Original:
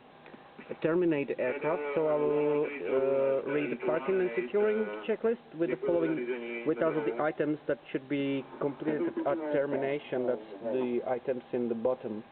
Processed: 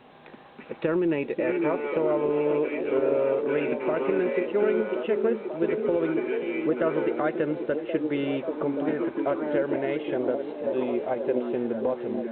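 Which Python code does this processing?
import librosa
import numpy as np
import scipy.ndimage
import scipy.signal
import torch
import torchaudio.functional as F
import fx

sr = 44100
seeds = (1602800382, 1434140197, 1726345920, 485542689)

y = fx.echo_stepped(x, sr, ms=538, hz=280.0, octaves=0.7, feedback_pct=70, wet_db=-2.5)
y = y * librosa.db_to_amplitude(3.0)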